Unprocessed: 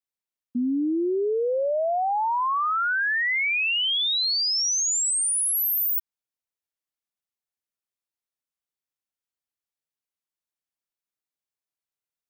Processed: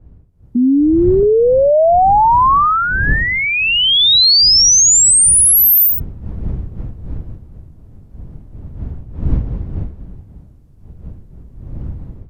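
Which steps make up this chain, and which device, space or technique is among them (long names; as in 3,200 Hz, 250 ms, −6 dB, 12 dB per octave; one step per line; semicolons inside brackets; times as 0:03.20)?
0:00.56–0:01.23: elliptic low-pass filter 1,600 Hz
smartphone video outdoors (wind on the microphone 94 Hz −36 dBFS; automatic gain control gain up to 17 dB; level −1 dB; AAC 64 kbit/s 32,000 Hz)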